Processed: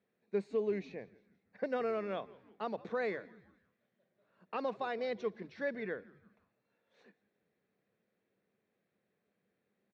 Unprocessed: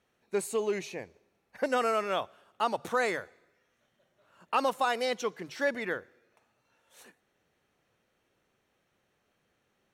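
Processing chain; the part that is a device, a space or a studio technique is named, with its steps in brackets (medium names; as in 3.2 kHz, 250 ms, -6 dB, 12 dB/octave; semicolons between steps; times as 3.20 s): frequency-shifting delay pedal into a guitar cabinet (frequency-shifting echo 169 ms, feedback 49%, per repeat -140 Hz, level -21.5 dB; cabinet simulation 110–3900 Hz, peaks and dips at 200 Hz +9 dB, 440 Hz +5 dB, 890 Hz -6 dB, 1.3 kHz -6 dB, 3 kHz -10 dB); trim -7.5 dB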